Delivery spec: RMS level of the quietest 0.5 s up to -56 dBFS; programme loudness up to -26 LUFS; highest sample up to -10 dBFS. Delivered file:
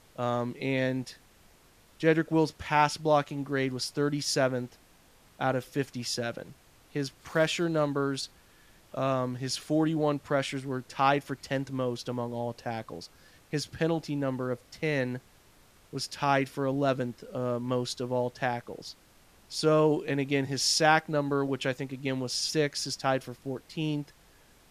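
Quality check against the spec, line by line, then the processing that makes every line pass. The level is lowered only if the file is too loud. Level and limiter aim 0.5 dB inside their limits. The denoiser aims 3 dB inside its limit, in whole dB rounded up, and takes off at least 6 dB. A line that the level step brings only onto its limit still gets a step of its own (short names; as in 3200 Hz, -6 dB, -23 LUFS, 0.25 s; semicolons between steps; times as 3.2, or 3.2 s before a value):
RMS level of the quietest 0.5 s -60 dBFS: OK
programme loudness -29.5 LUFS: OK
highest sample -8.0 dBFS: fail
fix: limiter -10.5 dBFS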